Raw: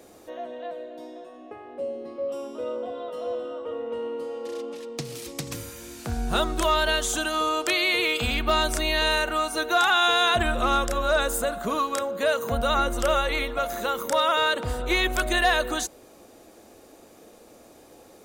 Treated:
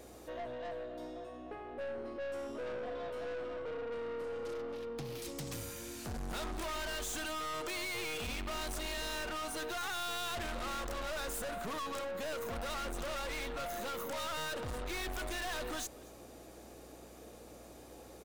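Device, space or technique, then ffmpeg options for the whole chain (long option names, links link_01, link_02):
valve amplifier with mains hum: -filter_complex "[0:a]asettb=1/sr,asplit=3[link_01][link_02][link_03];[link_01]atrim=end=4.534[link_04];[link_02]atrim=start=4.53:end=5.22,asetpts=PTS-STARTPTS,afade=type=in:duration=0.004:curve=qsin,afade=type=out:start_time=0.686:duration=0.004:curve=qsin,equalizer=frequency=8100:width_type=o:width=0.98:gain=-13.5[link_05];[link_03]atrim=start=5.216[link_06];[link_04][link_05]acrossfade=duration=0.004:curve1=hsin:curve2=qsin[link_07];[link_07][link_06]acrossfade=duration=0.004:curve1=qsin:curve2=hsin,aeval=exprs='(tanh(63.1*val(0)+0.25)-tanh(0.25))/63.1':channel_layout=same,aeval=exprs='val(0)+0.00126*(sin(2*PI*60*n/s)+sin(2*PI*2*60*n/s)/2+sin(2*PI*3*60*n/s)/3+sin(2*PI*4*60*n/s)/4+sin(2*PI*5*60*n/s)/5)':channel_layout=same,aecho=1:1:236:0.0668,volume=-2dB"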